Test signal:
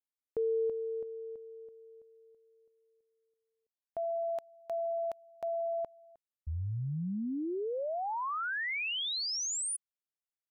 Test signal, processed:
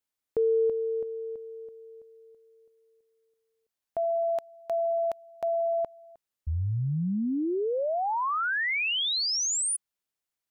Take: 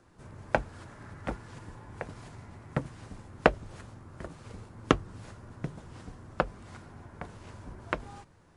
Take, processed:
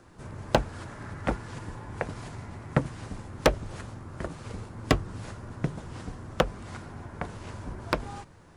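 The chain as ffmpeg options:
-af "acontrast=75,aeval=exprs='0.355*(abs(mod(val(0)/0.355+3,4)-2)-1)':c=same"

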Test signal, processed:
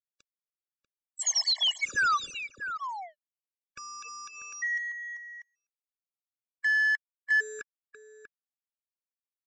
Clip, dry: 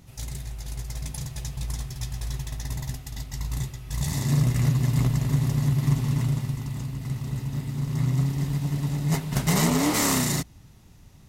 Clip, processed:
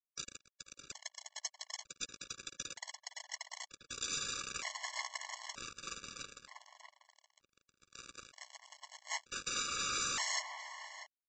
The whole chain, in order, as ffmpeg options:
-filter_complex "[0:a]highpass=f=1k:w=0.5412,highpass=f=1k:w=1.3066,alimiter=level_in=1dB:limit=-24dB:level=0:latency=1:release=114,volume=-1dB,aresample=16000,acrusher=bits=5:mix=0:aa=0.5,aresample=44100,asplit=2[a][b];[b]adelay=641.4,volume=-8dB,highshelf=f=4k:g=-14.4[c];[a][c]amix=inputs=2:normalize=0,afftfilt=real='re*gt(sin(2*PI*0.54*pts/sr)*(1-2*mod(floor(b*sr/1024/570),2)),0)':imag='im*gt(sin(2*PI*0.54*pts/sr)*(1-2*mod(floor(b*sr/1024/570),2)),0)':win_size=1024:overlap=0.75,volume=3.5dB"

